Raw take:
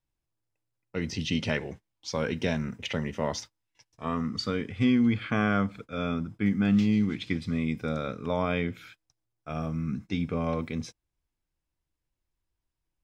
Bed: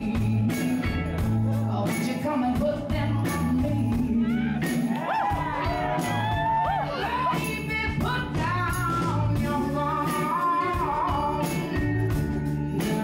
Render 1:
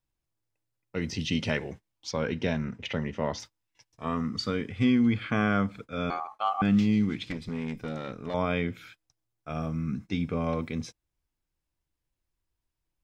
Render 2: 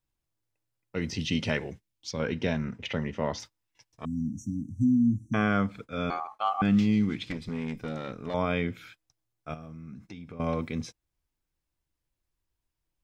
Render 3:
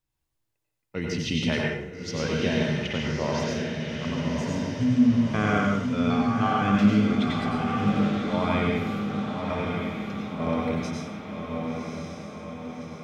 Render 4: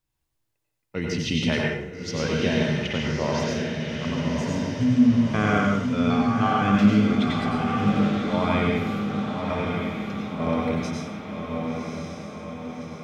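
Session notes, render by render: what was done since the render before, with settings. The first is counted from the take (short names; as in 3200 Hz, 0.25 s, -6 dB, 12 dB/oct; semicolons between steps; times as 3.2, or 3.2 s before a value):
2.11–3.4 air absorption 100 m; 6.1–6.62 ring modulator 970 Hz; 7.3–8.34 tube stage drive 27 dB, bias 0.6
1.7–2.2 bell 910 Hz -9 dB 1.9 oct; 4.05–5.34 brick-wall FIR band-stop 320–5600 Hz; 9.54–10.4 compressor, threshold -40 dBFS
diffused feedback echo 1.134 s, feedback 56%, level -4 dB; plate-style reverb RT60 0.61 s, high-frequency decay 0.95×, pre-delay 80 ms, DRR -1 dB
gain +2 dB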